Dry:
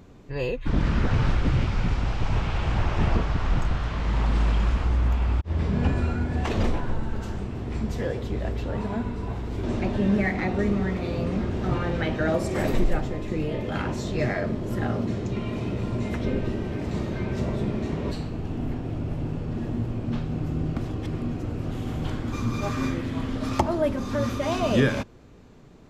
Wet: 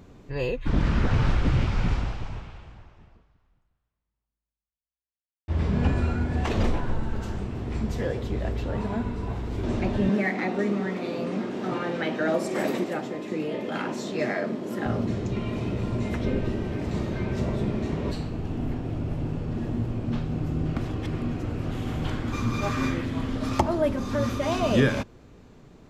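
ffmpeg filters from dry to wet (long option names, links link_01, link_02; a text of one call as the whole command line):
ffmpeg -i in.wav -filter_complex "[0:a]asettb=1/sr,asplit=3[link_01][link_02][link_03];[link_01]atrim=end=10.094[link_04];[link_02]atrim=start=10.09:end=14.86,asetpts=PTS-STARTPTS,afade=type=in:duration=0.004:curve=qsin,afade=type=out:start_time=4.766:duration=0.004:curve=qsin,highpass=frequency=190:width=0.5412,highpass=frequency=190:width=1.3066[link_05];[link_03]atrim=start=14.856[link_06];[link_04][link_05]acrossfade=duration=0.004:curve1=hsin:curve2=qsin[link_07];[link_07][link_06]acrossfade=duration=0.004:curve1=qsin:curve2=hsin,asettb=1/sr,asplit=3[link_08][link_09][link_10];[link_08]atrim=end=20.654[link_11];[link_09]atrim=start=20.65:end=23.05,asetpts=PTS-STARTPTS,afade=type=in:duration=0.004:curve=qsin,afade=type=out:start_time=2.396:duration=0.004:curve=qsin,equalizer=frequency=2000:width_type=o:width=2.1:gain=3.5[link_12];[link_10]atrim=start=23.046[link_13];[link_11][link_12]acrossfade=duration=0.004:curve1=hsin:curve2=qsin[link_14];[link_14][link_13]acrossfade=duration=0.004:curve1=qsin:curve2=hsin,asplit=2[link_15][link_16];[link_15]atrim=end=5.48,asetpts=PTS-STARTPTS,afade=type=out:start_time=1.95:duration=3.53:curve=exp[link_17];[link_16]atrim=start=5.48,asetpts=PTS-STARTPTS,afade=type=in:duration=0.004:curve=hsin[link_18];[link_17][link_18]concat=n=2:v=0:a=1" out.wav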